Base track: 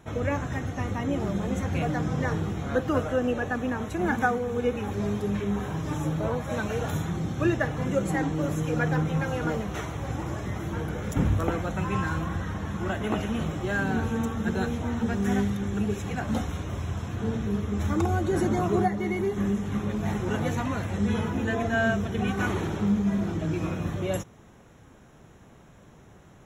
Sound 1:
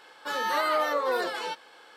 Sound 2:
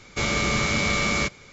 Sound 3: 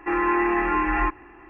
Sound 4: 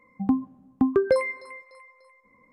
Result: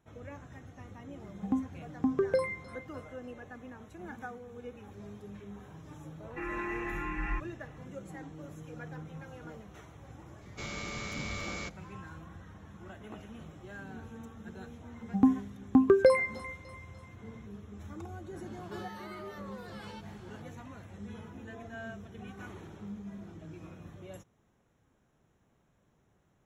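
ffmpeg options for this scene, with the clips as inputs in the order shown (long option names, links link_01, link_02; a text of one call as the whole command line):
ffmpeg -i bed.wav -i cue0.wav -i cue1.wav -i cue2.wav -i cue3.wav -filter_complex "[4:a]asplit=2[link_01][link_02];[0:a]volume=-18.5dB[link_03];[3:a]equalizer=frequency=690:width=0.45:gain=-14[link_04];[1:a]acompressor=threshold=-36dB:ratio=6:attack=3.2:release=140:knee=1:detection=peak[link_05];[link_01]atrim=end=2.52,asetpts=PTS-STARTPTS,volume=-7.5dB,afade=type=in:duration=0.004:curve=hsin,afade=type=out:start_time=2.516:duration=0.004:curve=hsin,adelay=1230[link_06];[link_04]atrim=end=1.49,asetpts=PTS-STARTPTS,volume=-5.5dB,afade=type=in:duration=0.004:curve=hsin,afade=type=out:start_time=1.486:duration=0.004:curve=hsin,adelay=6300[link_07];[2:a]atrim=end=1.52,asetpts=PTS-STARTPTS,volume=-16dB,afade=type=in:duration=0.004:curve=hsin,afade=type=out:start_time=1.516:duration=0.004:curve=hsin,adelay=10410[link_08];[link_02]atrim=end=2.52,asetpts=PTS-STARTPTS,volume=-0.5dB,afade=type=in:duration=0.004:curve=hsin,afade=type=out:start_time=2.516:duration=0.004:curve=hsin,adelay=14940[link_09];[link_05]atrim=end=1.96,asetpts=PTS-STARTPTS,volume=-8.5dB,afade=type=in:duration=0.004:curve=hsin,afade=type=out:start_time=1.956:duration=0.004:curve=hsin,adelay=18460[link_10];[link_03][link_06][link_07][link_08][link_09][link_10]amix=inputs=6:normalize=0" out.wav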